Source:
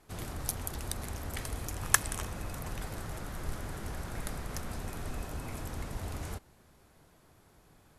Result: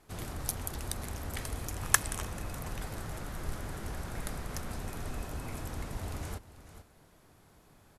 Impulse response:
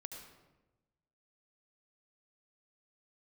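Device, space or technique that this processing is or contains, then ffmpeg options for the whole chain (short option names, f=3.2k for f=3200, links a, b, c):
ducked delay: -filter_complex "[0:a]asplit=3[a][b][c];[b]adelay=439,volume=-6.5dB[d];[c]apad=whole_len=371502[e];[d][e]sidechaincompress=threshold=-46dB:ratio=8:attack=16:release=864[f];[a][f]amix=inputs=2:normalize=0"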